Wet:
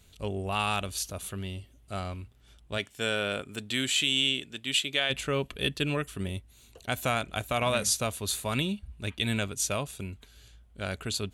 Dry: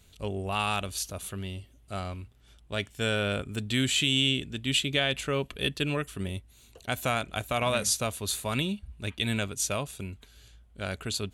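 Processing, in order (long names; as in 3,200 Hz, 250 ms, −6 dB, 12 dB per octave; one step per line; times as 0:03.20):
0:02.77–0:05.09: high-pass filter 240 Hz → 670 Hz 6 dB per octave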